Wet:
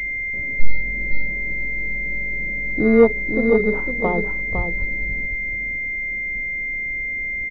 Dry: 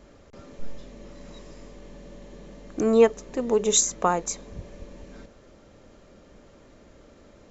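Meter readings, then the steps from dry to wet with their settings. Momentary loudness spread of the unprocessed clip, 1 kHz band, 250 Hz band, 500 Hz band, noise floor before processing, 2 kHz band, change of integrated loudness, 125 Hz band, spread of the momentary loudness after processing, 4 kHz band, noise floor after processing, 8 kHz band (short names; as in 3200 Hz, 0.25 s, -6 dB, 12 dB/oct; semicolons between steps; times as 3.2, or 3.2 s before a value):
14 LU, -1.5 dB, +8.0 dB, +4.0 dB, -53 dBFS, +24.5 dB, +1.5 dB, +10.5 dB, 7 LU, under -15 dB, -26 dBFS, n/a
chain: tilt -3.5 dB/oct; notches 60/120/180/240/300/360/420 Hz; echo 0.506 s -7 dB; pulse-width modulation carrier 2100 Hz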